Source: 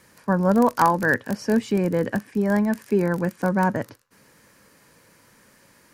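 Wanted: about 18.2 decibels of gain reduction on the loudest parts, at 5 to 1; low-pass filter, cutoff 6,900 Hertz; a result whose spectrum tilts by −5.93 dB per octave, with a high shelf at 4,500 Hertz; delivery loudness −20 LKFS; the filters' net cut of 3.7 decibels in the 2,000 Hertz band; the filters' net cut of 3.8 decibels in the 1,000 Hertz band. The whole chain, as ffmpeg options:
ffmpeg -i in.wav -af "lowpass=6900,equalizer=frequency=1000:width_type=o:gain=-4,equalizer=frequency=2000:width_type=o:gain=-4.5,highshelf=frequency=4500:gain=8.5,acompressor=threshold=-36dB:ratio=5,volume=18.5dB" out.wav

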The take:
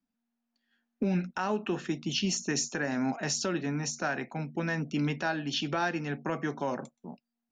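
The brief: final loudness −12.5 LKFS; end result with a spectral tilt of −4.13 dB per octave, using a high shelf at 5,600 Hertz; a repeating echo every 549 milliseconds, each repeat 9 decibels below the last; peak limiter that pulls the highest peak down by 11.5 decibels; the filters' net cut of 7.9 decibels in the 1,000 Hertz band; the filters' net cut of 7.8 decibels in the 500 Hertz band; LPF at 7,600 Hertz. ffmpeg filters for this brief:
ffmpeg -i in.wav -af "lowpass=7600,equalizer=frequency=500:width_type=o:gain=-9,equalizer=frequency=1000:width_type=o:gain=-8,highshelf=frequency=5600:gain=5,alimiter=level_in=4.5dB:limit=-24dB:level=0:latency=1,volume=-4.5dB,aecho=1:1:549|1098|1647|2196:0.355|0.124|0.0435|0.0152,volume=24.5dB" out.wav

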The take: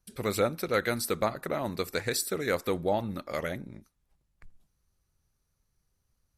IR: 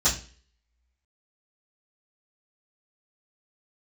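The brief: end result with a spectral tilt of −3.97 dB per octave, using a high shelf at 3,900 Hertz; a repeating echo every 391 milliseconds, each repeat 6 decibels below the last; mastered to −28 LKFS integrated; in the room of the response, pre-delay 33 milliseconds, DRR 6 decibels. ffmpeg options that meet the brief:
-filter_complex "[0:a]highshelf=frequency=3900:gain=4.5,aecho=1:1:391|782|1173|1564|1955|2346:0.501|0.251|0.125|0.0626|0.0313|0.0157,asplit=2[link_01][link_02];[1:a]atrim=start_sample=2205,adelay=33[link_03];[link_02][link_03]afir=irnorm=-1:irlink=0,volume=-19dB[link_04];[link_01][link_04]amix=inputs=2:normalize=0"

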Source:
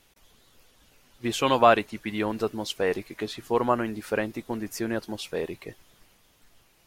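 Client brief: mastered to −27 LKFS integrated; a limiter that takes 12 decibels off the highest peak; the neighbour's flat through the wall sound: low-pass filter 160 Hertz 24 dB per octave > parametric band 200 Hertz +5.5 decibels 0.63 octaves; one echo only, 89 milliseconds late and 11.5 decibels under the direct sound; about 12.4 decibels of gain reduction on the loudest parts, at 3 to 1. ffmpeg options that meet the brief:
ffmpeg -i in.wav -af "acompressor=threshold=-29dB:ratio=3,alimiter=level_in=3dB:limit=-24dB:level=0:latency=1,volume=-3dB,lowpass=frequency=160:width=0.5412,lowpass=frequency=160:width=1.3066,equalizer=frequency=200:width_type=o:width=0.63:gain=5.5,aecho=1:1:89:0.266,volume=22dB" out.wav

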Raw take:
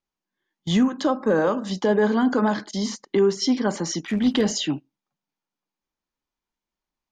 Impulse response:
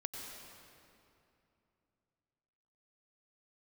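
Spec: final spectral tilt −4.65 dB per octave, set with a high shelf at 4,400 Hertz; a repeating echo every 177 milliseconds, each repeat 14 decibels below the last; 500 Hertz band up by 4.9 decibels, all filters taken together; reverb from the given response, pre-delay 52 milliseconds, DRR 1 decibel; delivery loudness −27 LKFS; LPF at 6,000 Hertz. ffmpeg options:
-filter_complex "[0:a]lowpass=6000,equalizer=frequency=500:width_type=o:gain=6,highshelf=frequency=4400:gain=7,aecho=1:1:177|354:0.2|0.0399,asplit=2[link_01][link_02];[1:a]atrim=start_sample=2205,adelay=52[link_03];[link_02][link_03]afir=irnorm=-1:irlink=0,volume=-0.5dB[link_04];[link_01][link_04]amix=inputs=2:normalize=0,volume=-10.5dB"

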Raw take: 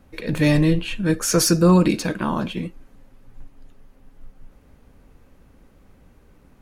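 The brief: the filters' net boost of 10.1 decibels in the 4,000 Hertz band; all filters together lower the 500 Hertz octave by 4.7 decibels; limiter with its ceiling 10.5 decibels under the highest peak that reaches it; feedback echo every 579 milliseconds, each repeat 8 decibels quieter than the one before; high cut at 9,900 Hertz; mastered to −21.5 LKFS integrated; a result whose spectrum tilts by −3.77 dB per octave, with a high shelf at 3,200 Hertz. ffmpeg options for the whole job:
ffmpeg -i in.wav -af "lowpass=9900,equalizer=frequency=500:width_type=o:gain=-6.5,highshelf=frequency=3200:gain=6,equalizer=frequency=4000:width_type=o:gain=8.5,alimiter=limit=-10.5dB:level=0:latency=1,aecho=1:1:579|1158|1737|2316|2895:0.398|0.159|0.0637|0.0255|0.0102" out.wav

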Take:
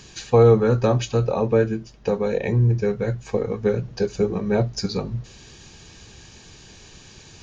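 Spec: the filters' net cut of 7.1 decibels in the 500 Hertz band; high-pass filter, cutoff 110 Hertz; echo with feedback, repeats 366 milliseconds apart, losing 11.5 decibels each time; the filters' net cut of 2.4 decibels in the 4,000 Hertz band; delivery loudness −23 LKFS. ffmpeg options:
ffmpeg -i in.wav -af "highpass=110,equalizer=frequency=500:width_type=o:gain=-8,equalizer=frequency=4000:width_type=o:gain=-3,aecho=1:1:366|732|1098:0.266|0.0718|0.0194,volume=2.5dB" out.wav

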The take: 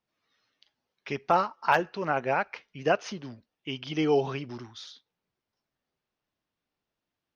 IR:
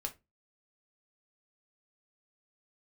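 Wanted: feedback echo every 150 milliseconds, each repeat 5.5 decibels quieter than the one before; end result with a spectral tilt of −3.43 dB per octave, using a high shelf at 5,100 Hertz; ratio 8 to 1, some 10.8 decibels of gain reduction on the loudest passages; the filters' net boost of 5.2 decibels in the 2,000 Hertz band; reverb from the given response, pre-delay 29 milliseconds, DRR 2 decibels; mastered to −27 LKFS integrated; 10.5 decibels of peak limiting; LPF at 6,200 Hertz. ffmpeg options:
-filter_complex "[0:a]lowpass=6200,equalizer=frequency=2000:width_type=o:gain=8,highshelf=frequency=5100:gain=-3.5,acompressor=threshold=-27dB:ratio=8,alimiter=limit=-22dB:level=0:latency=1,aecho=1:1:150|300|450|600|750|900|1050:0.531|0.281|0.149|0.079|0.0419|0.0222|0.0118,asplit=2[link_01][link_02];[1:a]atrim=start_sample=2205,adelay=29[link_03];[link_02][link_03]afir=irnorm=-1:irlink=0,volume=-1.5dB[link_04];[link_01][link_04]amix=inputs=2:normalize=0,volume=5dB"

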